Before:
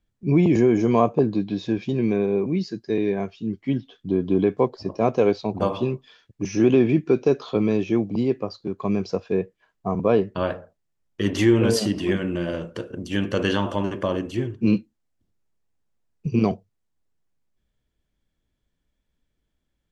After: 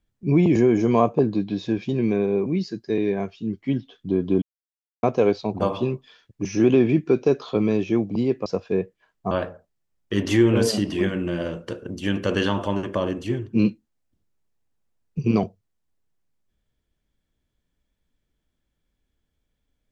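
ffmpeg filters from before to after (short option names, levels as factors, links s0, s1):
-filter_complex "[0:a]asplit=5[s0][s1][s2][s3][s4];[s0]atrim=end=4.42,asetpts=PTS-STARTPTS,afade=t=out:st=4.416:d=0.004:c=hsin[s5];[s1]atrim=start=4.42:end=5.03,asetpts=PTS-STARTPTS,volume=0[s6];[s2]atrim=start=5.03:end=8.462,asetpts=PTS-STARTPTS,afade=t=in:d=0.004:c=hsin[s7];[s3]atrim=start=9.058:end=9.912[s8];[s4]atrim=start=10.388[s9];[s5][s6][s7]concat=n=3:v=0:a=1[s10];[s10][s8]acrossfade=d=0.004:c1=hsin:c2=hsin[s11];[s11][s9]acrossfade=d=0.004:c1=hsin:c2=hsin"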